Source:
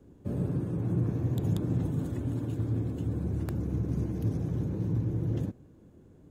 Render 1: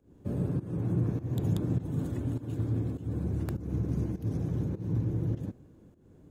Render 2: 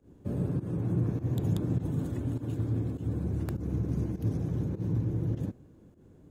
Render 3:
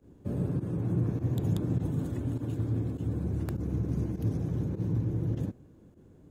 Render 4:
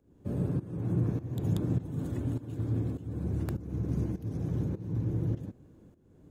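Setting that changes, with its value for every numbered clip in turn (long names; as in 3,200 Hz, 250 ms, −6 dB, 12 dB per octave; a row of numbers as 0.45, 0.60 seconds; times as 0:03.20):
fake sidechain pumping, release: 251, 123, 67, 472 milliseconds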